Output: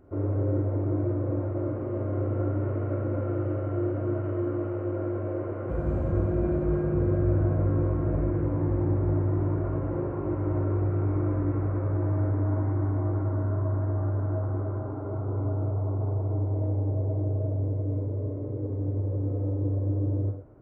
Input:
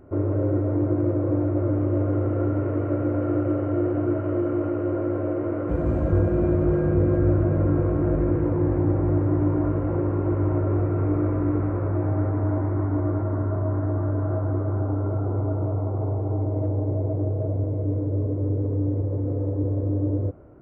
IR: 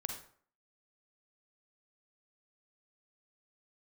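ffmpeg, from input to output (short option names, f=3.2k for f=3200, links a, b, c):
-filter_complex "[0:a]flanger=delay=4.1:depth=2.3:regen=-88:speed=0.12:shape=triangular[a];[1:a]atrim=start_sample=2205,afade=t=out:st=0.17:d=0.01,atrim=end_sample=7938[b];[a][b]afir=irnorm=-1:irlink=0"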